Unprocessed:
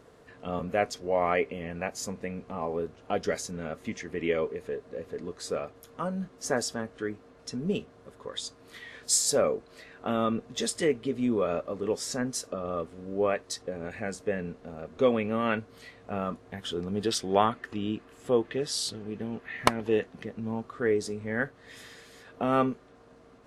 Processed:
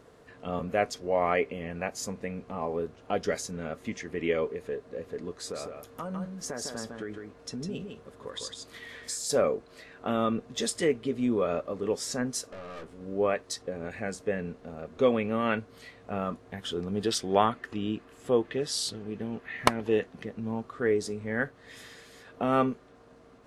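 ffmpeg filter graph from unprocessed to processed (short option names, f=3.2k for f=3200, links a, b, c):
-filter_complex "[0:a]asettb=1/sr,asplit=3[a][b][c];[a]atrim=end=5.384[d];[b]atrim=start=5.38:end=9.3,asetpts=PTS-STARTPTS,afade=t=in:d=0.004:c=qsin,afade=t=out:st=3.916:d=0.004:c=qsin,acompressor=threshold=-32dB:ratio=6:attack=3.2:release=140:knee=1:detection=peak,aecho=1:1:154:0.562,atrim=end_sample=172872[e];[c]atrim=start=9.296[f];[d][e]acrossfade=d=0.004:c1=hsin:c2=qsin[g];[g][f]acrossfade=d=0.004:c1=qsin:c2=hsin,asettb=1/sr,asplit=3[h][i][j];[h]atrim=end=12.524[k];[i]atrim=start=12.52:end=13.01,asetpts=PTS-STARTPTS,afade=t=in:d=0.004:c=qsin,afade=t=out:st=0.486:d=0.004:c=qsin,aeval=exprs='(tanh(100*val(0)+0.4)-tanh(0.4))/100':c=same,asplit=2[l][m];[m]adelay=18,volume=-6.5dB[n];[l][n]amix=inputs=2:normalize=0,atrim=end_sample=21609[o];[j]atrim=start=13.006[p];[k][o]acrossfade=d=0.004:c1=hsin:c2=qsin[q];[q][p]acrossfade=d=0.004:c1=qsin:c2=hsin"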